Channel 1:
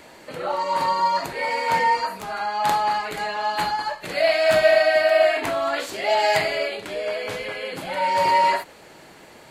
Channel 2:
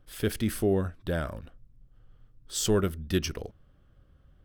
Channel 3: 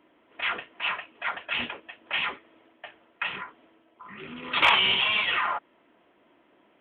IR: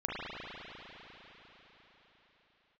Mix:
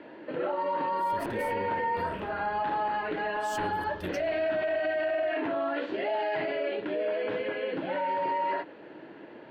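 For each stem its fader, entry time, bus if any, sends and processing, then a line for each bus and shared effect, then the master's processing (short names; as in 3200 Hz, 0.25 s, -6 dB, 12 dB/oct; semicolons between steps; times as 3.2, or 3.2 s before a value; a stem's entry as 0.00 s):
+1.0 dB, 0.00 s, bus A, no send, dry
-15.0 dB, 0.90 s, no bus, send -6.5 dB, dry
-14.5 dB, 0.00 s, bus A, no send, dry
bus A: 0.0 dB, speaker cabinet 170–2500 Hz, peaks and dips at 170 Hz -3 dB, 310 Hz +8 dB, 770 Hz -6 dB, 1200 Hz -9 dB, 2200 Hz -10 dB; limiter -17 dBFS, peak gain reduction 10 dB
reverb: on, RT60 4.7 s, pre-delay 35 ms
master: limiter -22.5 dBFS, peak gain reduction 6.5 dB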